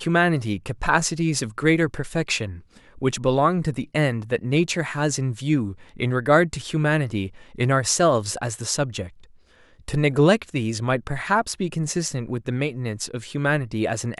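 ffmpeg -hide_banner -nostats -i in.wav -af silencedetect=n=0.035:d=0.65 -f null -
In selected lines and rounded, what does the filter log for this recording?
silence_start: 9.07
silence_end: 9.88 | silence_duration: 0.82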